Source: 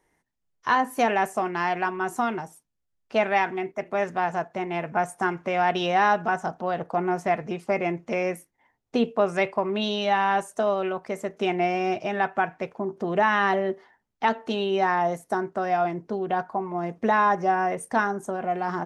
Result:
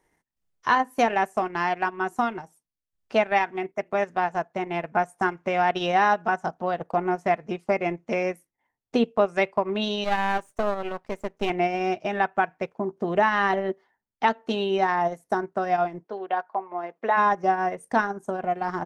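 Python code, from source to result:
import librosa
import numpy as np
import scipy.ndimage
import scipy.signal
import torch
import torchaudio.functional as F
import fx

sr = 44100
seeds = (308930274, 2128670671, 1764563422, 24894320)

y = fx.halfwave_gain(x, sr, db=-12.0, at=(10.04, 11.5))
y = fx.transient(y, sr, attack_db=2, sustain_db=-11)
y = fx.bandpass_edges(y, sr, low_hz=500.0, high_hz=fx.line((16.03, 4200.0), (17.16, 3000.0)), at=(16.03, 17.16), fade=0.02)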